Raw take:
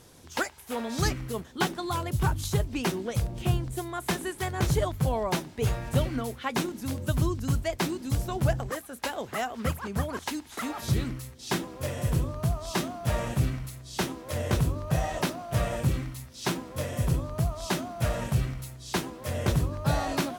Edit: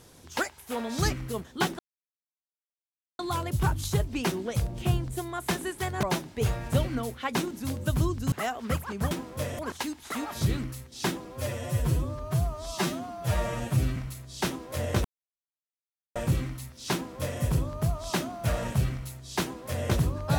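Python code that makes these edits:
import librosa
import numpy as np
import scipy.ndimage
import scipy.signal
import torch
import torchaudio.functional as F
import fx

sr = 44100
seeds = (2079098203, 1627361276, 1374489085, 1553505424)

y = fx.edit(x, sr, fx.insert_silence(at_s=1.79, length_s=1.4),
    fx.cut(start_s=4.63, length_s=0.61),
    fx.cut(start_s=7.53, length_s=1.74),
    fx.stretch_span(start_s=11.72, length_s=1.81, factor=1.5),
    fx.silence(start_s=14.61, length_s=1.11),
    fx.duplicate(start_s=16.5, length_s=0.48, to_s=10.06), tone=tone)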